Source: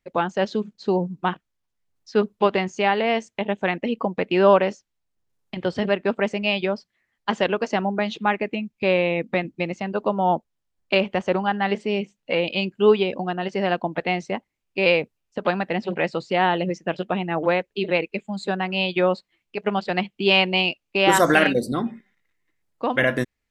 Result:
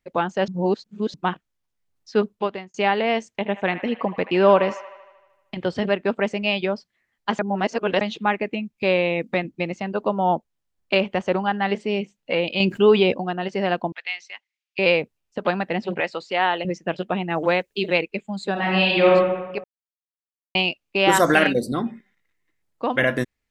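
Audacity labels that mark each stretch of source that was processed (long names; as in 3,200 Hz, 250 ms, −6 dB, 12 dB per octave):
0.480000	1.140000	reverse
2.190000	2.740000	fade out
3.270000	5.560000	delay with a band-pass on its return 77 ms, feedback 64%, band-pass 1,500 Hz, level −12 dB
7.390000	8.010000	reverse
8.780000	9.380000	bass and treble bass −1 dB, treble +5 dB
12.600000	13.130000	envelope flattener amount 50%
13.920000	14.790000	flat-topped band-pass 3,500 Hz, Q 0.8
16.000000	16.650000	meter weighting curve A
17.300000	18.020000	high-shelf EQ 4,600 Hz +12 dB
18.520000	19.110000	thrown reverb, RT60 1.2 s, DRR −4 dB
19.640000	20.550000	silence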